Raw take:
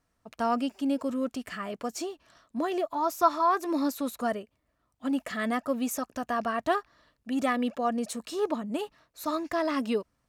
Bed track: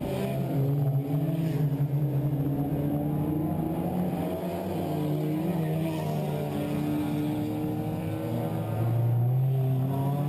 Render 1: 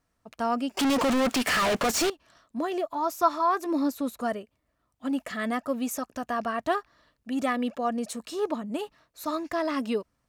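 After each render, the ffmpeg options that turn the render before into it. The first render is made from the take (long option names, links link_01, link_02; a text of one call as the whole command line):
ffmpeg -i in.wav -filter_complex "[0:a]asettb=1/sr,asplit=3[link_01][link_02][link_03];[link_01]atrim=end=0.774[link_04];[link_02]atrim=start=0.77:end=2.1,asetpts=PTS-STARTPTS,afade=type=in:duration=0.004:curve=qsin,afade=type=out:start_time=1.326:duration=0.004:curve=qsin,asplit=2[link_05][link_06];[link_06]highpass=frequency=720:poles=1,volume=40dB,asoftclip=type=tanh:threshold=-17.5dB[link_07];[link_05][link_07]amix=inputs=2:normalize=0,lowpass=frequency=6300:poles=1,volume=-6dB[link_08];[link_03]atrim=start=2.096[link_09];[link_04][link_08]acrossfade=duration=0.004:curve1=hsin:curve2=qsin[link_10];[link_10][link_09]acrossfade=duration=0.004:curve1=qsin:curve2=hsin,asettb=1/sr,asplit=3[link_11][link_12][link_13];[link_11]atrim=end=3.664[link_14];[link_12]atrim=start=3.66:end=4.21,asetpts=PTS-STARTPTS,afade=type=in:duration=0.004:curve=qsin,afade=type=out:start_time=0.546:duration=0.004:curve=qsin,tiltshelf=frequency=630:gain=3[link_15];[link_13]atrim=start=4.206[link_16];[link_14][link_15]acrossfade=duration=0.004:curve1=hsin:curve2=qsin[link_17];[link_17][link_16]acrossfade=duration=0.004:curve1=qsin:curve2=hsin" out.wav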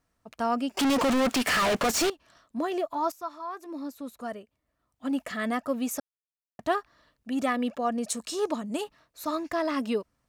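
ffmpeg -i in.wav -filter_complex "[0:a]asettb=1/sr,asplit=3[link_01][link_02][link_03];[link_01]atrim=end=8.104[link_04];[link_02]atrim=start=8.1:end=8.84,asetpts=PTS-STARTPTS,afade=type=in:duration=0.004:curve=qsin,afade=type=out:start_time=0.736:duration=0.004:curve=qsin,equalizer=frequency=7000:width_type=o:width=1.6:gain=8.5[link_05];[link_03]atrim=start=8.836[link_06];[link_04][link_05]acrossfade=duration=0.004:curve1=hsin:curve2=qsin[link_07];[link_07][link_06]acrossfade=duration=0.004:curve1=qsin:curve2=hsin,asplit=4[link_08][link_09][link_10][link_11];[link_08]atrim=end=3.12,asetpts=PTS-STARTPTS,afade=type=out:start_time=3.116:duration=0.004:curve=hsin:silence=0.211349[link_12];[link_09]atrim=start=3.12:end=6,asetpts=PTS-STARTPTS,afade=type=in:duration=2.04:curve=qua:silence=0.211349,afade=type=out:start_time=2.876:duration=0.004:curve=hsin[link_13];[link_10]atrim=start=6:end=6.59,asetpts=PTS-STARTPTS,volume=0[link_14];[link_11]atrim=start=6.59,asetpts=PTS-STARTPTS,afade=type=in:duration=0.004:curve=hsin[link_15];[link_12][link_13][link_14][link_15]concat=n=4:v=0:a=1" out.wav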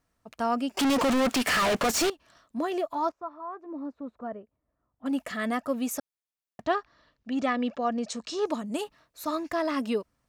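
ffmpeg -i in.wav -filter_complex "[0:a]asettb=1/sr,asplit=3[link_01][link_02][link_03];[link_01]atrim=end=3.094[link_04];[link_02]atrim=start=3.09:end=5.06,asetpts=PTS-STARTPTS,afade=type=in:duration=0.004:curve=qsin,afade=type=out:start_time=1.966:duration=0.004:curve=qsin,lowpass=1200[link_05];[link_03]atrim=start=5.056[link_06];[link_04][link_05]acrossfade=duration=0.004:curve1=hsin:curve2=qsin[link_07];[link_07][link_06]acrossfade=duration=0.004:curve1=qsin:curve2=hsin,asettb=1/sr,asplit=3[link_08][link_09][link_10];[link_08]atrim=end=6.624[link_11];[link_09]atrim=start=6.62:end=8.46,asetpts=PTS-STARTPTS,afade=type=in:duration=0.004:curve=qsin,afade=type=out:start_time=1.836:duration=0.004:curve=qsin,lowpass=frequency=6200:width=0.5412,lowpass=frequency=6200:width=1.3066[link_12];[link_10]atrim=start=8.456[link_13];[link_11][link_12]acrossfade=duration=0.004:curve1=hsin:curve2=qsin[link_14];[link_14][link_13]acrossfade=duration=0.004:curve1=qsin:curve2=hsin" out.wav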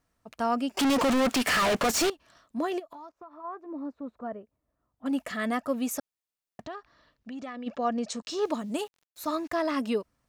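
ffmpeg -i in.wav -filter_complex "[0:a]asplit=3[link_01][link_02][link_03];[link_01]afade=type=out:start_time=2.78:duration=0.02[link_04];[link_02]acompressor=threshold=-41dB:ratio=16:attack=3.2:release=140:knee=1:detection=peak,afade=type=in:start_time=2.78:duration=0.02,afade=type=out:start_time=3.43:duration=0.02[link_05];[link_03]afade=type=in:start_time=3.43:duration=0.02[link_06];[link_04][link_05][link_06]amix=inputs=3:normalize=0,asplit=3[link_07][link_08][link_09];[link_07]afade=type=out:start_time=6.62:duration=0.02[link_10];[link_08]acompressor=threshold=-39dB:ratio=3:attack=3.2:release=140:knee=1:detection=peak,afade=type=in:start_time=6.62:duration=0.02,afade=type=out:start_time=7.66:duration=0.02[link_11];[link_09]afade=type=in:start_time=7.66:duration=0.02[link_12];[link_10][link_11][link_12]amix=inputs=3:normalize=0,asettb=1/sr,asplit=3[link_13][link_14][link_15];[link_13]atrim=end=8.224[link_16];[link_14]atrim=start=8.22:end=9.57,asetpts=PTS-STARTPTS,afade=type=in:duration=0.004:curve=qsin,afade=type=out:start_time=1.346:duration=0.004:curve=qsin,aeval=exprs='val(0)*gte(abs(val(0)),0.00237)':channel_layout=same[link_17];[link_15]atrim=start=9.566[link_18];[link_16][link_17]acrossfade=duration=0.004:curve1=hsin:curve2=qsin[link_19];[link_19][link_18]acrossfade=duration=0.004:curve1=qsin:curve2=hsin" out.wav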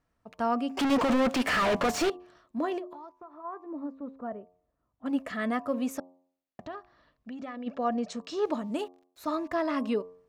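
ffmpeg -i in.wav -af "highshelf=frequency=4500:gain=-12,bandreject=frequency=89.75:width_type=h:width=4,bandreject=frequency=179.5:width_type=h:width=4,bandreject=frequency=269.25:width_type=h:width=4,bandreject=frequency=359:width_type=h:width=4,bandreject=frequency=448.75:width_type=h:width=4,bandreject=frequency=538.5:width_type=h:width=4,bandreject=frequency=628.25:width_type=h:width=4,bandreject=frequency=718:width_type=h:width=4,bandreject=frequency=807.75:width_type=h:width=4,bandreject=frequency=897.5:width_type=h:width=4,bandreject=frequency=987.25:width_type=h:width=4,bandreject=frequency=1077:width_type=h:width=4,bandreject=frequency=1166.75:width_type=h:width=4" out.wav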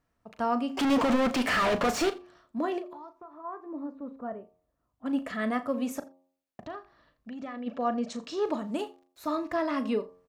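ffmpeg -i in.wav -filter_complex "[0:a]asplit=2[link_01][link_02];[link_02]adelay=37,volume=-12dB[link_03];[link_01][link_03]amix=inputs=2:normalize=0,aecho=1:1:84:0.0841" out.wav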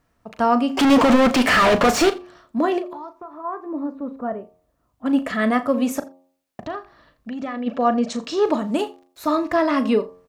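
ffmpeg -i in.wav -af "volume=10dB" out.wav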